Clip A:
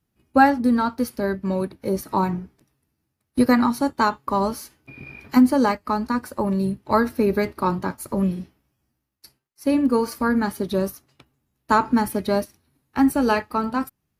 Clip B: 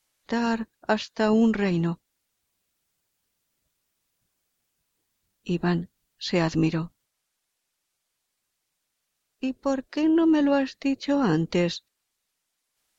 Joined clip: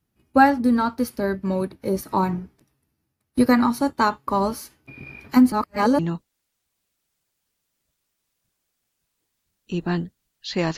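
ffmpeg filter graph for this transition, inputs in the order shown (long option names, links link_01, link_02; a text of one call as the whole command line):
ffmpeg -i cue0.wav -i cue1.wav -filter_complex "[0:a]apad=whole_dur=10.77,atrim=end=10.77,asplit=2[link_01][link_02];[link_01]atrim=end=5.522[link_03];[link_02]atrim=start=5.518:end=5.992,asetpts=PTS-STARTPTS,areverse[link_04];[1:a]atrim=start=1.758:end=6.54[link_05];[link_03][link_04]acrossfade=duration=0.004:curve1=hsin:curve2=hsin[link_06];[link_06][link_05]acrossfade=duration=0.004:curve1=hsin:curve2=hsin" out.wav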